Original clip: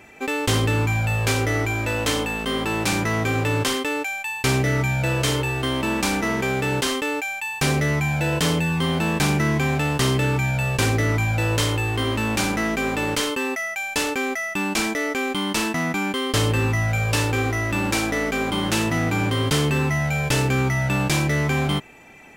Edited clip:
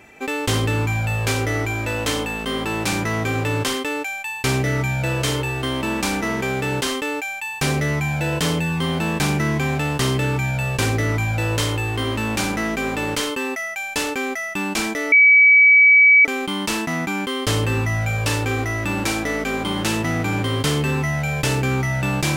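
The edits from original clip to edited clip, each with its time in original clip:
15.12 s: add tone 2.28 kHz -8 dBFS 1.13 s

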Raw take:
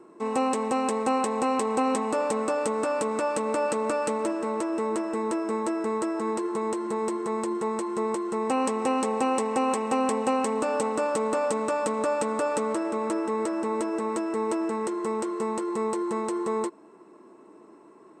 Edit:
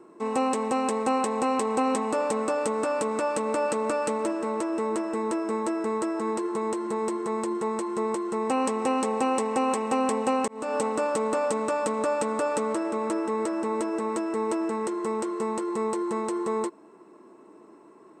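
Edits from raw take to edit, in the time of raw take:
10.48–10.77 s: fade in

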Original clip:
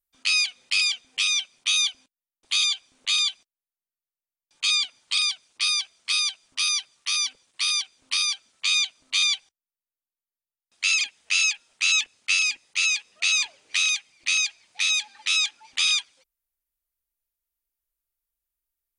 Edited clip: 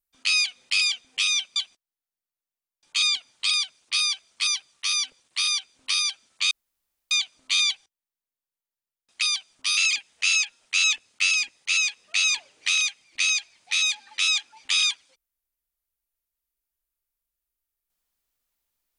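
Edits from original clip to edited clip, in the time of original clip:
1.56–3.24 s: delete
6.15–6.70 s: move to 10.85 s
8.74 s: insert room tone 0.60 s

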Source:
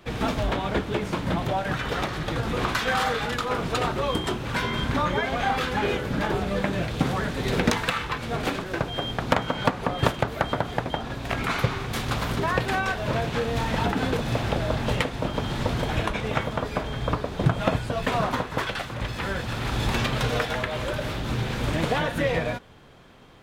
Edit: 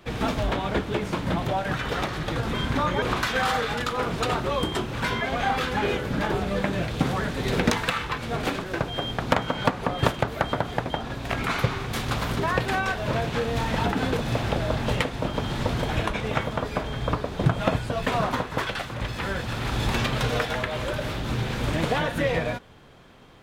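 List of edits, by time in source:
4.73–5.21 s: move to 2.54 s

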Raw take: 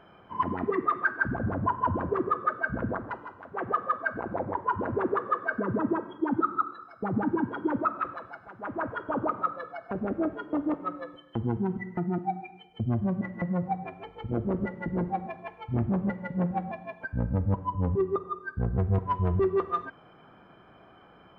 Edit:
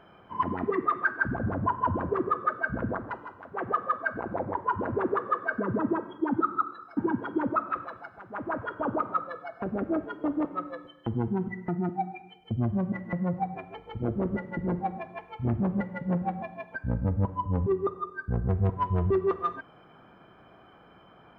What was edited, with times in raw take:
6.97–7.26 s: delete

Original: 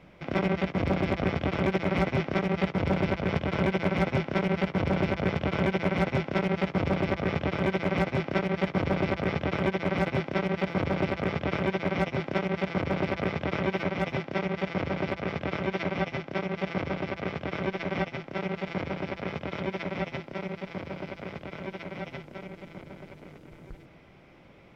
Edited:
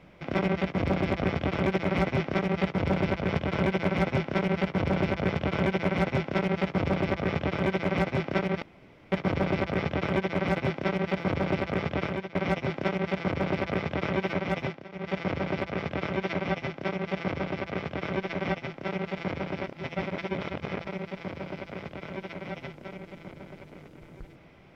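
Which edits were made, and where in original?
8.62 s: insert room tone 0.50 s
11.49–11.85 s: fade out, to -16.5 dB
14.13–14.64 s: dip -19.5 dB, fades 0.25 s
19.14–20.37 s: reverse

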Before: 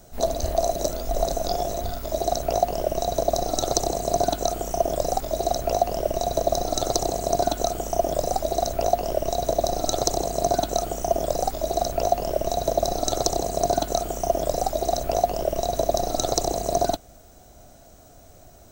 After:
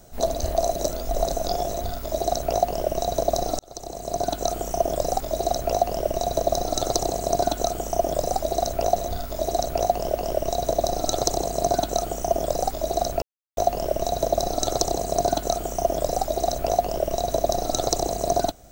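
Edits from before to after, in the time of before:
1.69–2.89 s: copy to 8.96 s
3.59–4.53 s: fade in
12.02 s: insert silence 0.35 s

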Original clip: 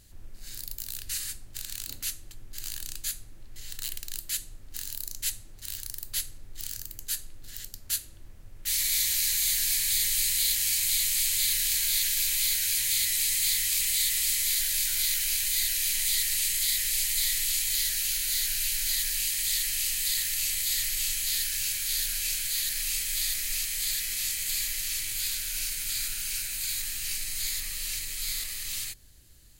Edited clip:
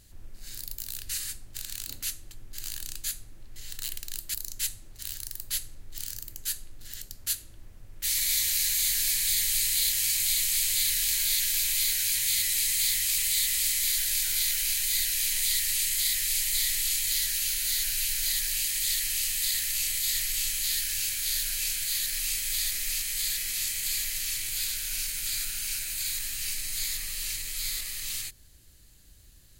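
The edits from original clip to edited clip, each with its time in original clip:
4.34–4.97 s: delete

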